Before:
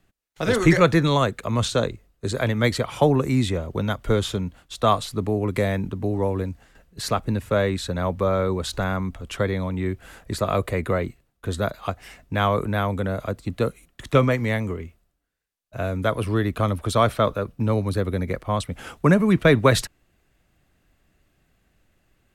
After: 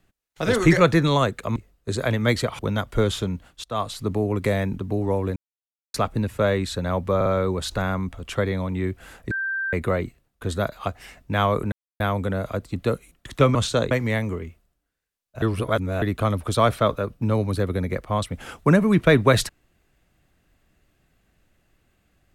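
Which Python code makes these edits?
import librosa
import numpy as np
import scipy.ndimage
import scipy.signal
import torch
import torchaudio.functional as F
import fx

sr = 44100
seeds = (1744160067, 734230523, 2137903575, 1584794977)

y = fx.edit(x, sr, fx.move(start_s=1.56, length_s=0.36, to_s=14.29),
    fx.cut(start_s=2.95, length_s=0.76),
    fx.fade_in_from(start_s=4.76, length_s=0.39, floor_db=-19.0),
    fx.silence(start_s=6.48, length_s=0.58),
    fx.stutter(start_s=8.28, slice_s=0.05, count=3),
    fx.bleep(start_s=10.33, length_s=0.42, hz=1570.0, db=-23.5),
    fx.insert_silence(at_s=12.74, length_s=0.28),
    fx.reverse_span(start_s=15.8, length_s=0.6), tone=tone)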